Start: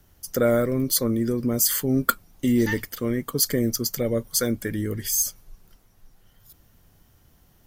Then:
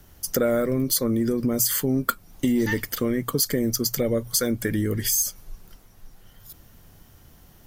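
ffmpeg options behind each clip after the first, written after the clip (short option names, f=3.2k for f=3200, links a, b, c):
-af "acontrast=29,bandreject=f=60:t=h:w=6,bandreject=f=120:t=h:w=6,acompressor=threshold=-23dB:ratio=3,volume=1.5dB"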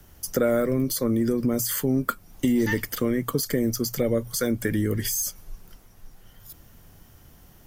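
-filter_complex "[0:a]equalizer=f=4k:w=3.8:g=-2.5,acrossover=split=260|1600[a][b][c];[c]alimiter=limit=-18dB:level=0:latency=1:release=24[d];[a][b][d]amix=inputs=3:normalize=0"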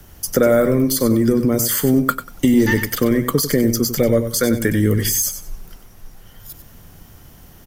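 -af "aecho=1:1:95|190|285:0.316|0.0696|0.0153,volume=7.5dB"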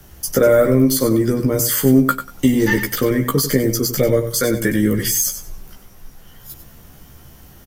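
-filter_complex "[0:a]asplit=2[a][b];[b]adelay=15,volume=-3dB[c];[a][c]amix=inputs=2:normalize=0,volume=-1dB"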